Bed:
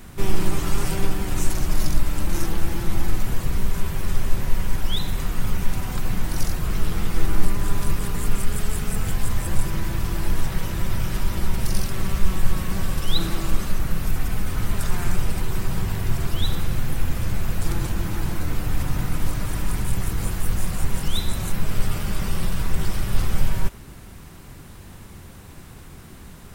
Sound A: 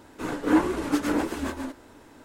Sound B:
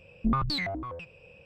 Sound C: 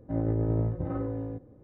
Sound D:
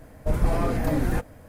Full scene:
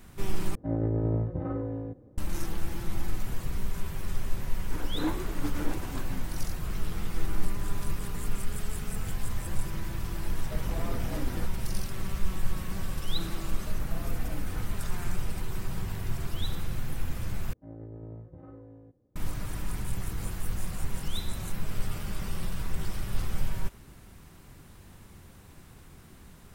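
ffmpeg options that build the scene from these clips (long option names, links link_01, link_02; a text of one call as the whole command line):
ffmpeg -i bed.wav -i cue0.wav -i cue1.wav -i cue2.wav -i cue3.wav -filter_complex "[3:a]asplit=2[link_01][link_02];[4:a]asplit=2[link_03][link_04];[0:a]volume=-9dB[link_05];[link_04]acompressor=threshold=-26dB:ratio=6:attack=3.2:release=140:knee=1:detection=peak[link_06];[link_05]asplit=3[link_07][link_08][link_09];[link_07]atrim=end=0.554[link_10];[link_01]atrim=end=1.63,asetpts=PTS-STARTPTS,volume=-0.5dB[link_11];[link_08]atrim=start=2.176:end=17.534[link_12];[link_02]atrim=end=1.63,asetpts=PTS-STARTPTS,volume=-16dB[link_13];[link_09]atrim=start=19.156[link_14];[1:a]atrim=end=2.24,asetpts=PTS-STARTPTS,volume=-11dB,afade=type=in:duration=0.004:curve=hsin,afade=type=out:start_time=2.236:duration=0.004:curve=hsin,adelay=4510[link_15];[link_03]atrim=end=1.48,asetpts=PTS-STARTPTS,volume=-12dB,afade=type=in:duration=0.004:curve=hsin,afade=type=out:start_time=1.476:duration=0.004:curve=hsin,adelay=10250[link_16];[link_06]atrim=end=1.48,asetpts=PTS-STARTPTS,volume=-10.5dB,afade=type=in:duration=0.004:curve=hsin,afade=type=out:start_time=1.476:duration=0.004:curve=hsin,adelay=13410[link_17];[link_10][link_11]acrossfade=duration=0.004:curve1=hsin:curve2=hsin[link_18];[link_18][link_12]acrossfade=duration=0.004:curve1=hsin:curve2=hsin[link_19];[link_19][link_13]acrossfade=duration=0.004:curve1=hsin:curve2=hsin[link_20];[link_20][link_14]acrossfade=duration=0.004:curve1=hsin:curve2=hsin[link_21];[link_21][link_15][link_16][link_17]amix=inputs=4:normalize=0" out.wav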